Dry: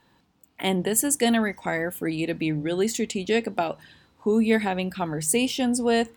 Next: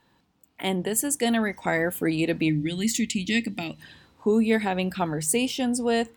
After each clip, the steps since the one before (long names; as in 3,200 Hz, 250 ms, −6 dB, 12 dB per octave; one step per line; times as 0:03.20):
gain on a spectral selection 0:02.49–0:03.81, 330–1,800 Hz −16 dB
speech leveller within 3 dB 0.5 s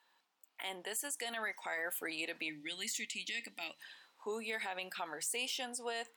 high-pass filter 830 Hz 12 dB per octave
brickwall limiter −23.5 dBFS, peak gain reduction 11.5 dB
level −5 dB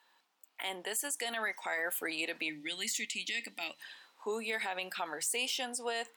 high-pass filter 140 Hz
level +4 dB